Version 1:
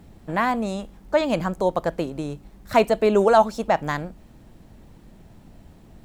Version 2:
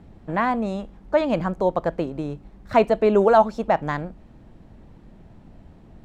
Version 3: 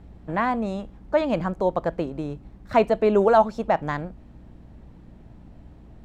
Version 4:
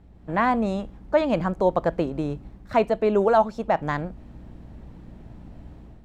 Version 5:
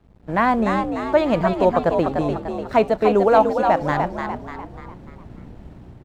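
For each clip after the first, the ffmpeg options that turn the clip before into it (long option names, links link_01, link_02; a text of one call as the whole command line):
ffmpeg -i in.wav -af "aemphasis=mode=reproduction:type=75fm" out.wav
ffmpeg -i in.wav -af "aeval=exprs='val(0)+0.00501*(sin(2*PI*60*n/s)+sin(2*PI*2*60*n/s)/2+sin(2*PI*3*60*n/s)/3+sin(2*PI*4*60*n/s)/4+sin(2*PI*5*60*n/s)/5)':channel_layout=same,volume=-1.5dB" out.wav
ffmpeg -i in.wav -af "dynaudnorm=framelen=120:gausssize=5:maxgain=9dB,volume=-5.5dB" out.wav
ffmpeg -i in.wav -filter_complex "[0:a]aeval=exprs='sgn(val(0))*max(abs(val(0))-0.00251,0)':channel_layout=same,asplit=6[link_01][link_02][link_03][link_04][link_05][link_06];[link_02]adelay=296,afreqshift=62,volume=-5.5dB[link_07];[link_03]adelay=592,afreqshift=124,volume=-12.6dB[link_08];[link_04]adelay=888,afreqshift=186,volume=-19.8dB[link_09];[link_05]adelay=1184,afreqshift=248,volume=-26.9dB[link_10];[link_06]adelay=1480,afreqshift=310,volume=-34dB[link_11];[link_01][link_07][link_08][link_09][link_10][link_11]amix=inputs=6:normalize=0,volume=3.5dB" out.wav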